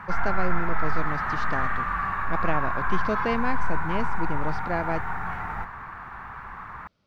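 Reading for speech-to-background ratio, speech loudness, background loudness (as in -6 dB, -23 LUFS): -2.0 dB, -31.5 LUFS, -29.5 LUFS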